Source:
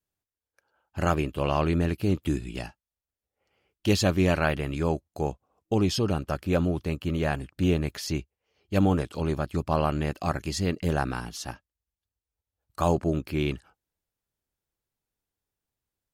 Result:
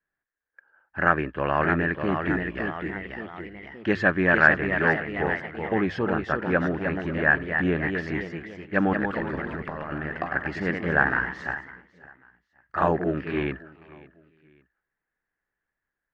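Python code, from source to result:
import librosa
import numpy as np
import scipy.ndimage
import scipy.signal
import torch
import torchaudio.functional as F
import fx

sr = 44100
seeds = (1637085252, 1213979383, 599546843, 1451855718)

y = fx.lowpass_res(x, sr, hz=1700.0, q=7.9)
y = fx.echo_feedback(y, sr, ms=550, feedback_pct=34, wet_db=-21.5)
y = fx.over_compress(y, sr, threshold_db=-31.0, ratio=-1.0, at=(8.93, 10.32))
y = fx.peak_eq(y, sr, hz=92.0, db=-10.0, octaves=0.89)
y = fx.hum_notches(y, sr, base_hz=50, count=2)
y = fx.echo_pitch(y, sr, ms=677, semitones=1, count=3, db_per_echo=-6.0)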